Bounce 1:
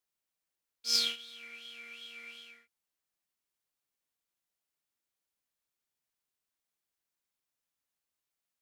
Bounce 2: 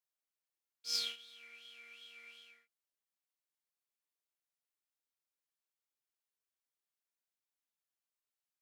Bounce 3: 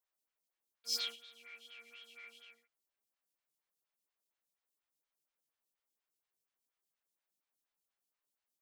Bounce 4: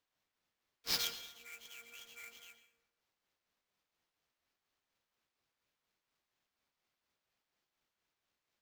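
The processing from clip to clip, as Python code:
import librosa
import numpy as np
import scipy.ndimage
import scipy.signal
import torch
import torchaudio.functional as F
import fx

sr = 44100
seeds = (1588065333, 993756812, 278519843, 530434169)

y1 = scipy.signal.sosfilt(scipy.signal.butter(2, 320.0, 'highpass', fs=sr, output='sos'), x)
y1 = y1 * librosa.db_to_amplitude(-7.5)
y2 = 10.0 ** (-30.0 / 20.0) * np.tanh(y1 / 10.0 ** (-30.0 / 20.0))
y2 = fx.stagger_phaser(y2, sr, hz=4.2)
y2 = y2 * librosa.db_to_amplitude(5.5)
y3 = fx.sample_hold(y2, sr, seeds[0], rate_hz=9700.0, jitter_pct=20)
y3 = fx.rev_plate(y3, sr, seeds[1], rt60_s=0.79, hf_ratio=0.65, predelay_ms=105, drr_db=12.5)
y3 = y3 * librosa.db_to_amplitude(1.5)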